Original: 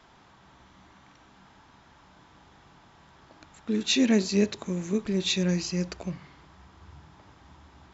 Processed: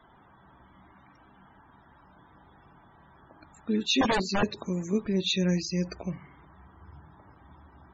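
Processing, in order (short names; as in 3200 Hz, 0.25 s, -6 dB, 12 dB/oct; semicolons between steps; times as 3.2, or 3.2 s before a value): 4.01–4.43 wrapped overs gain 18.5 dB; loudest bins only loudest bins 64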